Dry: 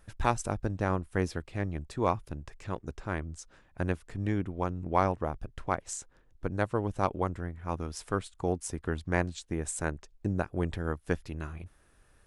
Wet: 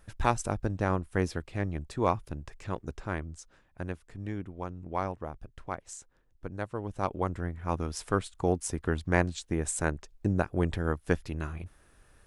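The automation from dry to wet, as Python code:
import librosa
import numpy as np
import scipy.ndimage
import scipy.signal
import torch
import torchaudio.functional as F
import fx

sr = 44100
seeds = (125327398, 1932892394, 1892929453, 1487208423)

y = fx.gain(x, sr, db=fx.line((2.99, 1.0), (3.89, -6.0), (6.75, -6.0), (7.47, 3.0)))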